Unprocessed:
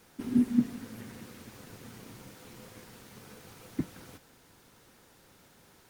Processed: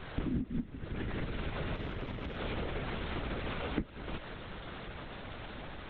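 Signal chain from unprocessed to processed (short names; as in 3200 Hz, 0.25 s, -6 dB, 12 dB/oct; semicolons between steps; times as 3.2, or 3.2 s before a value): LPC vocoder at 8 kHz whisper; compressor 12:1, threshold -49 dBFS, peak gain reduction 29 dB; 1.75–2.37 tube stage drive 44 dB, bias 0.45; gain +17 dB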